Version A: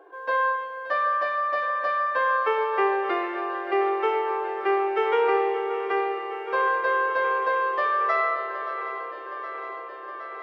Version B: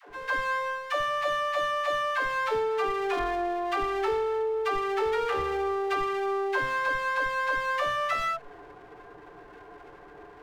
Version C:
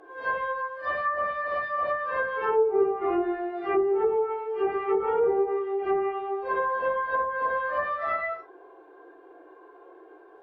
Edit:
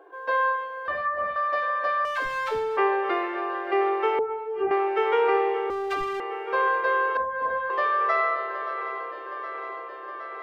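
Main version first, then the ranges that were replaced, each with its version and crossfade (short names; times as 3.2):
A
0.88–1.36 from C
2.05–2.77 from B
4.19–4.71 from C
5.7–6.2 from B
7.17–7.7 from C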